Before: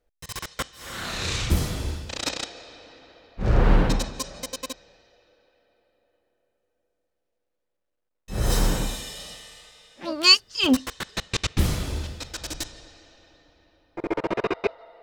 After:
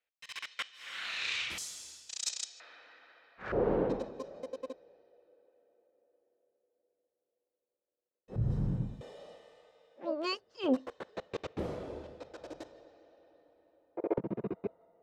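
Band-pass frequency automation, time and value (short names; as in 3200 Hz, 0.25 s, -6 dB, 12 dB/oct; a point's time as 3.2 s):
band-pass, Q 2.1
2500 Hz
from 1.58 s 7000 Hz
from 2.6 s 1600 Hz
from 3.52 s 450 Hz
from 8.36 s 130 Hz
from 9.01 s 520 Hz
from 14.18 s 180 Hz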